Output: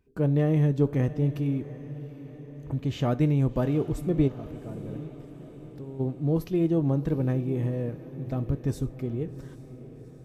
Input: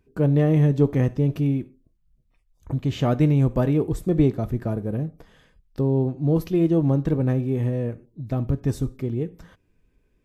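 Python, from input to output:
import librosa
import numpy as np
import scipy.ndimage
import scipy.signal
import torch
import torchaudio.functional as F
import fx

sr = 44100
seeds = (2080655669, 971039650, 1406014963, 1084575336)

y = fx.level_steps(x, sr, step_db=17, at=(4.27, 5.99), fade=0.02)
y = fx.echo_diffused(y, sr, ms=757, feedback_pct=56, wet_db=-15.0)
y = F.gain(torch.from_numpy(y), -4.5).numpy()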